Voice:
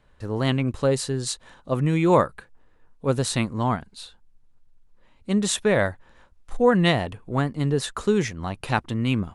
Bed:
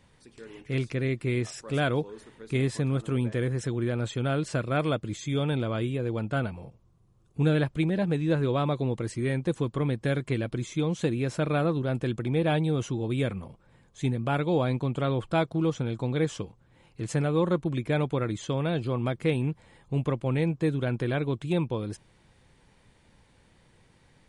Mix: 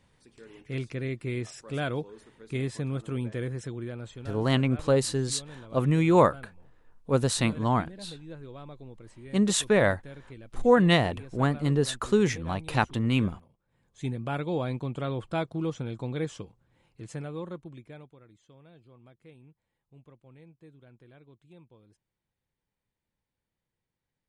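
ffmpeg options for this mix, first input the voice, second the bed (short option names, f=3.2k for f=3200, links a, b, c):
-filter_complex "[0:a]adelay=4050,volume=-1.5dB[a];[1:a]volume=9dB,afade=t=out:st=3.44:d=0.96:silence=0.211349,afade=t=in:st=13.67:d=0.41:silence=0.211349,afade=t=out:st=16.09:d=2.06:silence=0.0749894[b];[a][b]amix=inputs=2:normalize=0"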